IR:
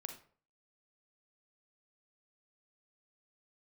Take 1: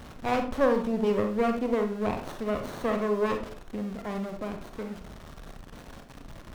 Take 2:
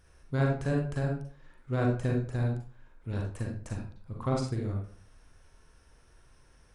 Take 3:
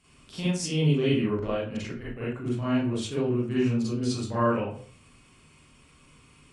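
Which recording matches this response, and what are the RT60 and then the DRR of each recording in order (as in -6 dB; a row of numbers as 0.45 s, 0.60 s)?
1; 0.50 s, 0.50 s, 0.50 s; 5.0 dB, -1.5 dB, -10.0 dB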